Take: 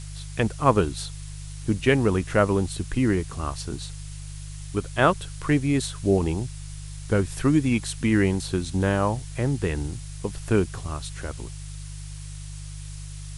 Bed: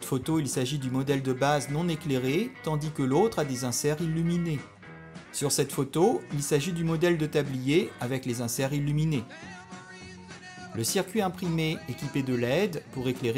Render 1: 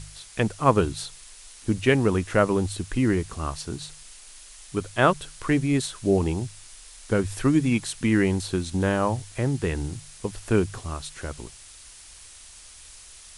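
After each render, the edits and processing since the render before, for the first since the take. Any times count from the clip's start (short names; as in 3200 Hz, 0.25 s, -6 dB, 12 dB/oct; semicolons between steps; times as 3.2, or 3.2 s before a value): de-hum 50 Hz, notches 3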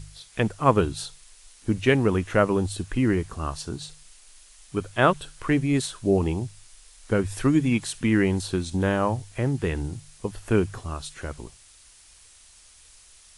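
noise print and reduce 6 dB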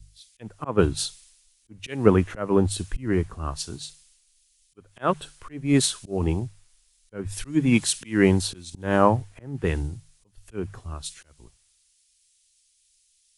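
auto swell 0.2 s; three-band expander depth 100%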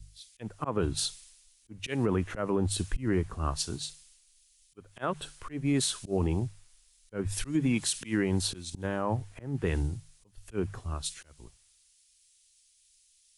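compressor 2.5:1, threshold -23 dBFS, peak gain reduction 9 dB; limiter -18 dBFS, peak gain reduction 8 dB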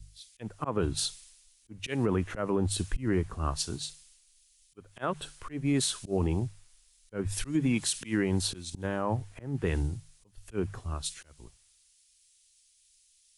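nothing audible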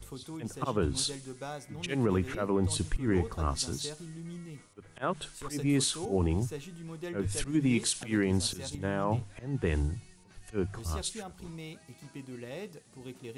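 add bed -15.5 dB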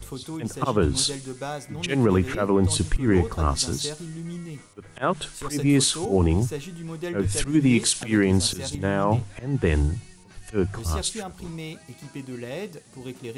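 gain +8 dB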